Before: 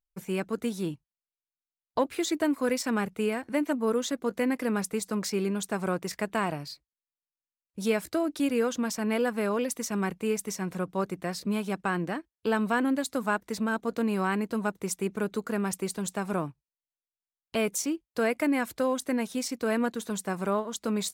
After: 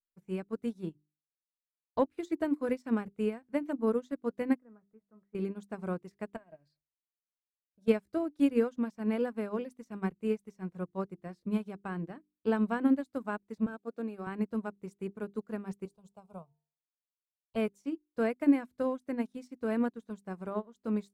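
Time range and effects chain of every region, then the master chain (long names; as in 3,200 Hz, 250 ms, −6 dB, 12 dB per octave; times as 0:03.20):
0:04.56–0:05.35: low-pass filter 1,800 Hz 24 dB per octave + tuned comb filter 640 Hz, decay 0.26 s, mix 70%
0:06.36–0:07.88: downward compressor 4 to 1, threshold −39 dBFS + hollow resonant body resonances 620/1,600 Hz, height 16 dB, ringing for 50 ms
0:13.66–0:14.27: high-pass filter 240 Hz + notch comb filter 1,000 Hz
0:15.85–0:17.56: phaser with its sweep stopped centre 740 Hz, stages 4 + hum removal 227.8 Hz, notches 4
whole clip: spectral tilt −2.5 dB per octave; mains-hum notches 50/100/150/200/250/300/350/400 Hz; expander for the loud parts 2.5 to 1, over −38 dBFS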